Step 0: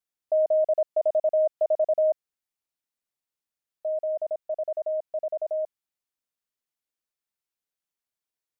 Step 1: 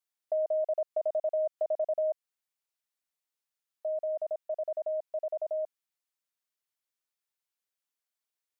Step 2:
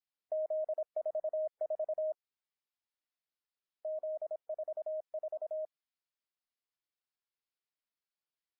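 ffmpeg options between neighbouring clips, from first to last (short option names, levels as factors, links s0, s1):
-af "lowshelf=f=350:g=-12,acompressor=threshold=0.0316:ratio=2"
-af "volume=0.531" -ar 12000 -c:a libmp3lame -b:a 16k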